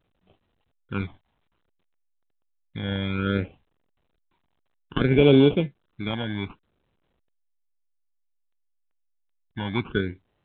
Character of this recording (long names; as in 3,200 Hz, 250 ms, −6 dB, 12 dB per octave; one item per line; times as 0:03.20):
aliases and images of a low sample rate 1,900 Hz, jitter 0%
phaser sweep stages 12, 0.6 Hz, lowest notch 420–1,700 Hz
A-law companding